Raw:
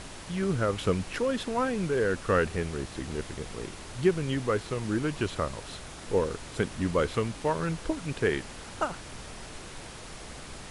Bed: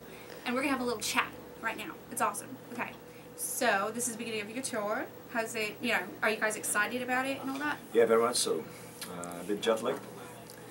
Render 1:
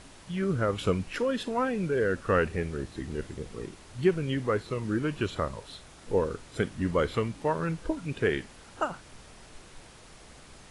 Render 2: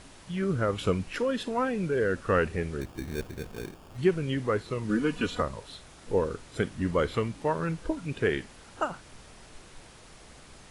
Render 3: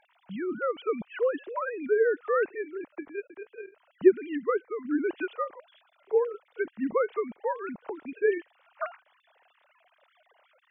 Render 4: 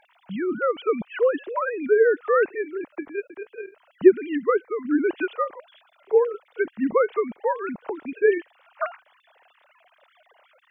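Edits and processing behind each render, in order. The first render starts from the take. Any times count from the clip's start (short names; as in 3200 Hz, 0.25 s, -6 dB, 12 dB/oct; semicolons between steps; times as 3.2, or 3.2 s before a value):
noise print and reduce 8 dB
2.81–3.98 sample-rate reducer 2000 Hz; 4.89–5.42 comb 4.1 ms, depth 94%
sine-wave speech
gain +6 dB; limiter -3 dBFS, peak gain reduction 1.5 dB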